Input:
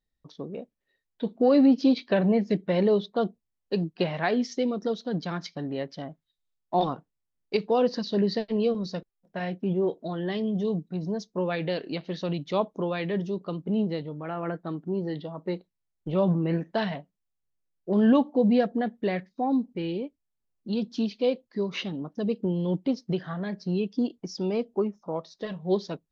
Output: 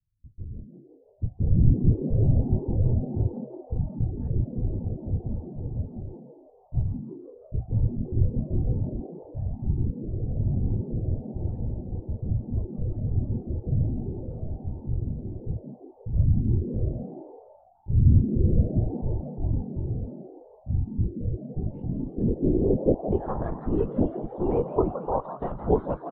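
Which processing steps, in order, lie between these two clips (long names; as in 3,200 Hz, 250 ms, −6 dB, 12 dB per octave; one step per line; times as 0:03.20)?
linear-prediction vocoder at 8 kHz whisper
low-pass filter sweep 110 Hz → 910 Hz, 0:21.41–0:23.40
echo with shifted repeats 167 ms, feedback 52%, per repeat +130 Hz, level −11.5 dB
level +1.5 dB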